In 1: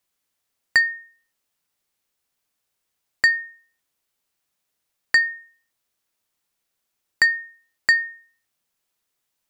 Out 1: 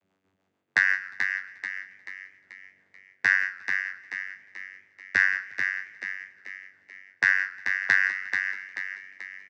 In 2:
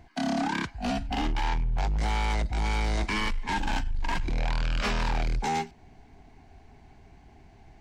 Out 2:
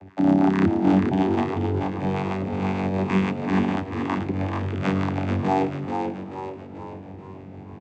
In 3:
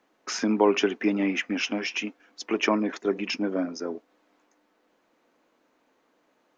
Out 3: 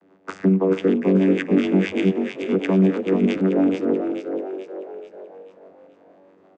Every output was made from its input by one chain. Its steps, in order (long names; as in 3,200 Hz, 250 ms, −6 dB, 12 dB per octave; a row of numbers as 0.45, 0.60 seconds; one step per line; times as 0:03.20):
running median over 9 samples
rotating-speaker cabinet horn 6.3 Hz
reversed playback
downward compressor 4 to 1, threshold −34 dBFS
reversed playback
channel vocoder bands 16, saw 95.2 Hz
on a send: echo with shifted repeats 435 ms, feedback 47%, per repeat +47 Hz, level −6 dB
on the sum: feedback echo with a swinging delay time 178 ms, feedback 60%, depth 196 cents, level −22 dB
normalise the peak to −6 dBFS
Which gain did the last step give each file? +13.5, +18.0, +18.0 decibels